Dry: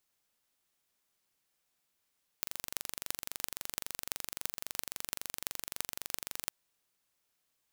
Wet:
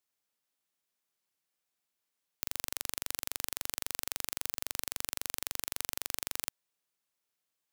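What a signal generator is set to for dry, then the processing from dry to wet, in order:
pulse train 23.7 per s, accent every 8, -4.5 dBFS 4.09 s
high-pass 120 Hz 6 dB/octave; waveshaping leveller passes 3

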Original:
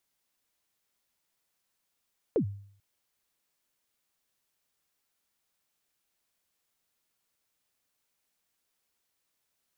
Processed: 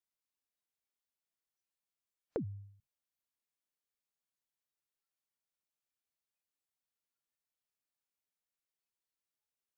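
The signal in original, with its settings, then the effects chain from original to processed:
kick drum length 0.44 s, from 520 Hz, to 100 Hz, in 90 ms, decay 0.58 s, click off, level -20 dB
spectral noise reduction 16 dB; compression 6:1, threshold -35 dBFS

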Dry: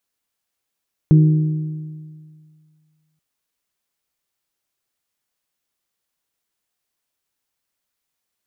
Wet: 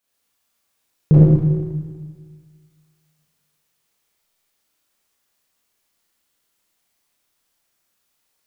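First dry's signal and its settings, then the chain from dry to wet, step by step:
metal hit bell, length 2.08 s, lowest mode 155 Hz, modes 4, decay 2.01 s, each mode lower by 10 dB, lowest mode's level -6.5 dB
Schroeder reverb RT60 1.7 s, combs from 27 ms, DRR -8 dB; loudspeaker Doppler distortion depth 0.64 ms

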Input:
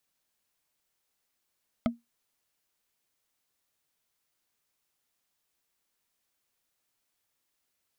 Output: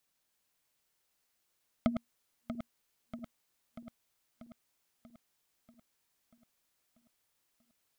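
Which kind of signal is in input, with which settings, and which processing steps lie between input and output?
wood hit, lowest mode 235 Hz, decay 0.18 s, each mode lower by 3.5 dB, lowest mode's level -19.5 dB
backward echo that repeats 319 ms, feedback 77%, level -8 dB

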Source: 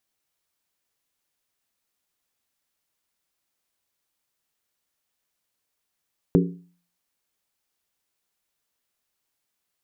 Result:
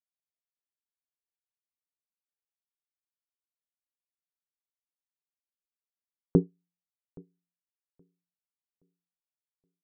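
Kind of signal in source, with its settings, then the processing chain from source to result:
skin hit, lowest mode 175 Hz, decay 0.46 s, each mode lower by 2.5 dB, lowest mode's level -13.5 dB
low-pass 1.5 kHz 24 dB/octave; feedback delay 822 ms, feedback 48%, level -10.5 dB; upward expansion 2.5:1, over -36 dBFS

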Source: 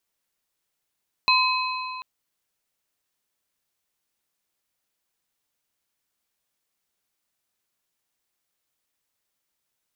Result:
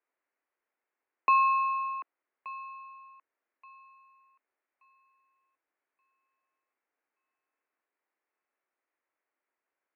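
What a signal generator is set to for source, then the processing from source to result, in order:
metal hit plate, length 0.74 s, lowest mode 1.02 kHz, modes 3, decay 2.75 s, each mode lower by 0.5 dB, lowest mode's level -18.5 dB
dynamic bell 440 Hz, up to +4 dB, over -41 dBFS, Q 0.81; thinning echo 1177 ms, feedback 29%, high-pass 760 Hz, level -16.5 dB; mistuned SSB +54 Hz 220–2200 Hz

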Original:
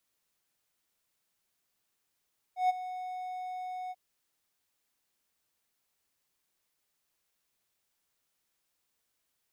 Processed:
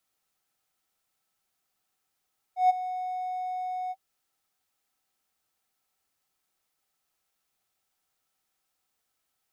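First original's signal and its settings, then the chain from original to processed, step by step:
ADSR triangle 736 Hz, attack 134 ms, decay 21 ms, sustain -14.5 dB, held 1.35 s, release 37 ms -19.5 dBFS
small resonant body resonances 770/1300 Hz, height 11 dB, ringing for 55 ms

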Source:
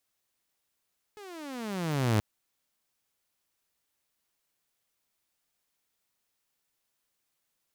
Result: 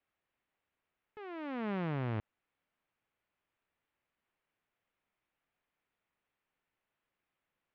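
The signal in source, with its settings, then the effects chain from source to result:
gliding synth tone saw, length 1.03 s, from 431 Hz, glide -25 st, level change +23 dB, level -19 dB
low-pass 2.7 kHz 24 dB/octave; peak limiter -29 dBFS; vibrato 2.9 Hz 25 cents

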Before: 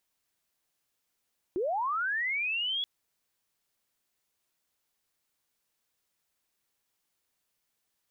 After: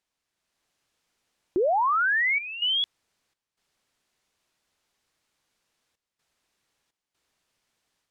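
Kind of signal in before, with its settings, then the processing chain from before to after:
sweep linear 330 Hz -> 3.4 kHz -27 dBFS -> -28.5 dBFS 1.28 s
level rider gain up to 8 dB; trance gate "xxxxxxxxxx.xxx." 63 bpm -12 dB; distance through air 52 m

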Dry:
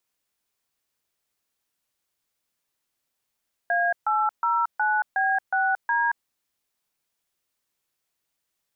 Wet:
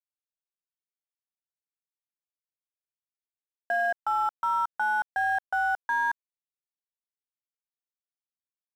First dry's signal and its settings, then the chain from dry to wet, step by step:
DTMF "A809B6D", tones 226 ms, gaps 139 ms, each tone -22.5 dBFS
bass shelf 370 Hz +11.5 dB; peak limiter -19 dBFS; crossover distortion -46.5 dBFS

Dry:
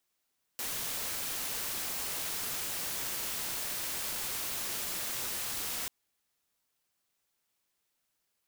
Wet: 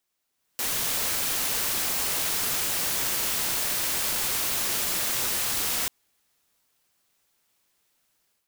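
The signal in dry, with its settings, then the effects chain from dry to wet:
noise white, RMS -36 dBFS 5.29 s
level rider gain up to 9 dB

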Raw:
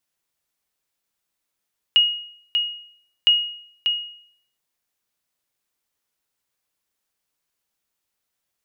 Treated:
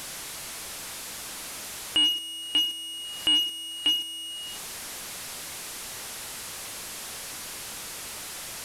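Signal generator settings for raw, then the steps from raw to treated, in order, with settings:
sonar ping 2.88 kHz, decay 0.62 s, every 1.31 s, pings 2, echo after 0.59 s, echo -6 dB -8.5 dBFS
one-bit delta coder 64 kbps, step -30.5 dBFS

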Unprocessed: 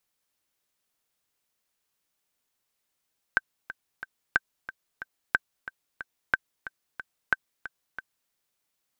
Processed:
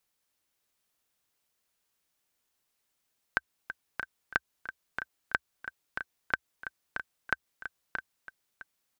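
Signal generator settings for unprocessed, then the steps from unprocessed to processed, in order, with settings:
metronome 182 bpm, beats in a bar 3, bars 5, 1.55 kHz, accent 15 dB -7.5 dBFS
peaking EQ 66 Hz +3 dB 0.52 oct; compression, threshold -24 dBFS; on a send: delay 626 ms -8 dB

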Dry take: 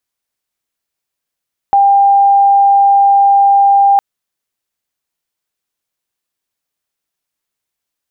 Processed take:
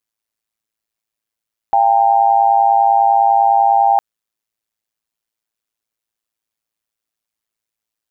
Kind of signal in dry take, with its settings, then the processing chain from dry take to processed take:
tone sine 797 Hz -5 dBFS 2.26 s
AM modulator 110 Hz, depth 75%

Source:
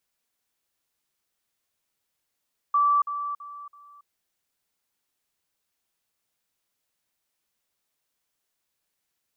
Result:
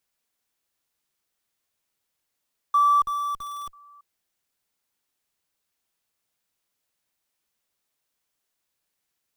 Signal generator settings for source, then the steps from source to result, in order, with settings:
level ladder 1.16 kHz -17.5 dBFS, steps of -10 dB, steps 4, 0.28 s 0.05 s
dynamic bell 1 kHz, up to +3 dB, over -33 dBFS, Q 3; in parallel at -5.5 dB: Schmitt trigger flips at -41 dBFS

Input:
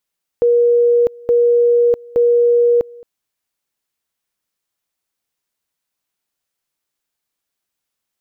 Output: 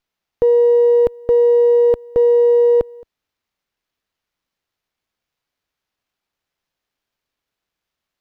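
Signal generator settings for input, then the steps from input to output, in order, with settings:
two-level tone 477 Hz -9 dBFS, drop 25 dB, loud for 0.65 s, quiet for 0.22 s, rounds 3
bass shelf 78 Hz +10.5 dB; sliding maximum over 5 samples

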